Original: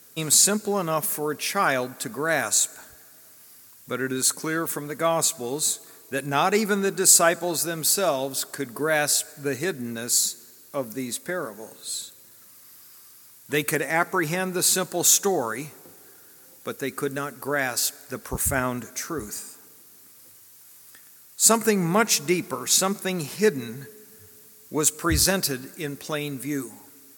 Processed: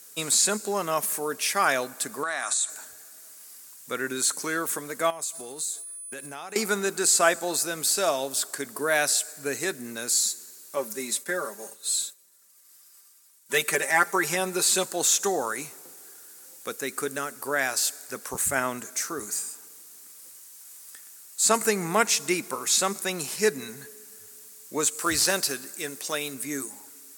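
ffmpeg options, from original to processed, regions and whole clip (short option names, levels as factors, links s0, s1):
-filter_complex "[0:a]asettb=1/sr,asplit=3[s0][s1][s2];[s0]atrim=end=2.234[s3];[s1]atrim=start=2.23:end=2.7,asetpts=PTS-STARTPTS,afade=t=in:d=0.004:c=qsin,afade=t=out:st=0.466:d=0.004:c=qsin,highpass=220,equalizer=f=430:t=q:w=4:g=-9,equalizer=f=810:t=q:w=4:g=5,equalizer=f=1200:t=q:w=4:g=9,equalizer=f=1900:t=q:w=4:g=5,equalizer=f=3600:t=q:w=4:g=8,equalizer=f=9000:t=q:w=4:g=7,lowpass=f=9500:w=0.5412,lowpass=f=9500:w=1.3066,acompressor=threshold=0.0631:ratio=10:attack=3.2:release=140:knee=1:detection=peak[s4];[s2]atrim=start=2.696[s5];[s3][s4]acrossfade=d=0.004:c1=hsin:c2=qsin[s6];[s6][s5]acrossfade=d=0.004:c1=qsin:c2=hsin,asettb=1/sr,asplit=3[s7][s8][s9];[s7]atrim=end=5.104[s10];[s8]atrim=start=5.1:end=6.56,asetpts=PTS-STARTPTS,afade=t=in:d=0.004:c=qsin,afade=t=out:st=1.456:d=0.004:c=qsin,agate=range=0.0224:threshold=0.0112:ratio=3:release=100:detection=peak,aeval=exprs='val(0)+0.00794*sin(2*PI*9900*n/s)':c=same,acompressor=threshold=0.0251:ratio=10:attack=3.2:release=140:knee=1:detection=peak[s11];[s9]atrim=start=6.556[s12];[s10][s11]acrossfade=d=0.004:c1=hsin:c2=qsin[s13];[s13][s12]acrossfade=d=0.004:c1=qsin:c2=hsin,asettb=1/sr,asplit=3[s14][s15][s16];[s14]atrim=end=10.764[s17];[s15]atrim=start=10.76:end=14.85,asetpts=PTS-STARTPTS,afade=t=in:d=0.004:c=qsin,afade=t=out:st=4.086:d=0.004:c=qsin,agate=range=0.0224:threshold=0.00794:ratio=3:release=100:detection=peak,lowshelf=f=110:g=-10.5,aecho=1:1:5.1:0.73,atrim=end_sample=180369[s18];[s16]atrim=start=14.846[s19];[s17][s18]acrossfade=d=0.004:c1=hsin:c2=qsin[s20];[s20][s19]acrossfade=d=0.004:c1=qsin:c2=hsin,asettb=1/sr,asplit=3[s21][s22][s23];[s21]atrim=end=24.904[s24];[s22]atrim=start=24.9:end=26.34,asetpts=PTS-STARTPTS,afade=t=in:d=0.004:c=qsin,afade=t=out:st=1.436:d=0.004:c=qsin,bass=f=250:g=-4,treble=f=4000:g=2,aeval=exprs='0.355*(abs(mod(val(0)/0.355+3,4)-2)-1)':c=same,acrusher=bits=5:mode=log:mix=0:aa=0.000001[s25];[s23]atrim=start=26.336[s26];[s24][s25]acrossfade=d=0.004:c1=hsin:c2=qsin[s27];[s27][s26]acrossfade=d=0.004:c1=qsin:c2=hsin,acrossover=split=4200[s28][s29];[s29]acompressor=threshold=0.0447:ratio=4:attack=1:release=60[s30];[s28][s30]amix=inputs=2:normalize=0,highpass=f=440:p=1,equalizer=f=8100:t=o:w=0.97:g=7"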